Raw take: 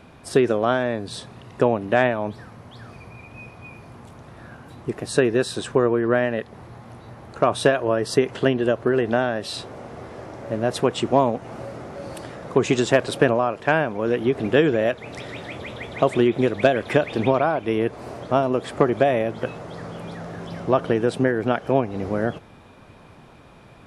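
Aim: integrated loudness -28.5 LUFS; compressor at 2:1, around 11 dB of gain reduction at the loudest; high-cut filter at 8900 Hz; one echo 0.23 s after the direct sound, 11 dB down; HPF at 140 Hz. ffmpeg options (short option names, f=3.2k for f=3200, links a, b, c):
-af "highpass=140,lowpass=8.9k,acompressor=threshold=-33dB:ratio=2,aecho=1:1:230:0.282,volume=3.5dB"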